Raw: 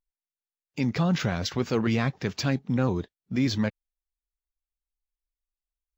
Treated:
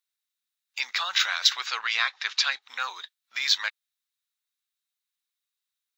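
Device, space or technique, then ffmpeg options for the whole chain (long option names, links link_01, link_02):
headphones lying on a table: -filter_complex "[0:a]highpass=frequency=1200:width=0.5412,highpass=frequency=1200:width=1.3066,equalizer=frequency=3800:width_type=o:width=0.21:gain=10,asettb=1/sr,asplit=3[link_01][link_02][link_03];[link_01]atrim=end=1.664[link_04];[link_02]atrim=start=1.66:end=2.62,asetpts=PTS-STARTPTS,afade=type=in:duration=0.004:curve=qsin,afade=type=out:start_time=0.956:duration=0.004:curve=qsin,lowpass=6000[link_05];[link_03]atrim=start=2.616[link_06];[link_04][link_05]acrossfade=duration=0.004:curve1=hsin:curve2=qsin[link_07];[link_07][link_06]acrossfade=duration=0.004:curve1=qsin:curve2=hsin,volume=8.5dB"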